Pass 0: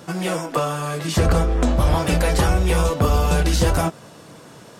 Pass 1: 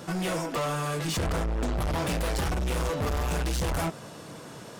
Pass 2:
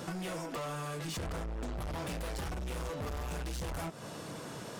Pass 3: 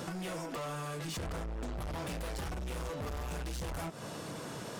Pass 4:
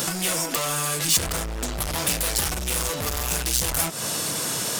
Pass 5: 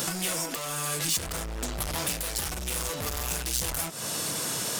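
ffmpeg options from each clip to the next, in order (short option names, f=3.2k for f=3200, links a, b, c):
-af "asoftclip=type=tanh:threshold=-26dB"
-af "acompressor=threshold=-37dB:ratio=12"
-af "acompressor=threshold=-39dB:ratio=6,volume=2dB"
-af "crystalizer=i=6.5:c=0,volume=8dB"
-af "alimiter=limit=-10.5dB:level=0:latency=1:release=411,volume=-4dB"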